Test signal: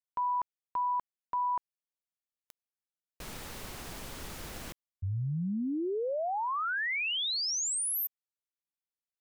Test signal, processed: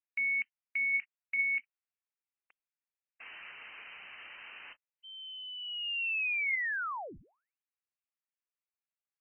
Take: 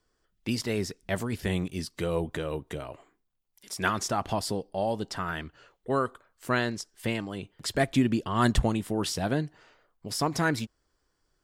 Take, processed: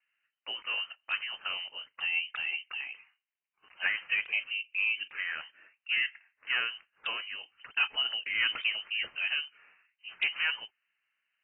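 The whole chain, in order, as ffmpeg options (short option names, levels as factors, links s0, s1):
-filter_complex "[0:a]highpass=f=100:w=0.5412,highpass=f=100:w=1.3066,acrossover=split=380 2000:gain=0.2 1 0.126[s0][s1][s2];[s0][s1][s2]amix=inputs=3:normalize=0,acrossover=split=290|680|2500[s3][s4][s5][s6];[s5]asoftclip=type=tanh:threshold=0.0422[s7];[s3][s4][s7][s6]amix=inputs=4:normalize=0,lowpass=f=2700:t=q:w=0.5098,lowpass=f=2700:t=q:w=0.6013,lowpass=f=2700:t=q:w=0.9,lowpass=f=2700:t=q:w=2.563,afreqshift=-3200,volume=1.12" -ar 22050 -c:a aac -b:a 16k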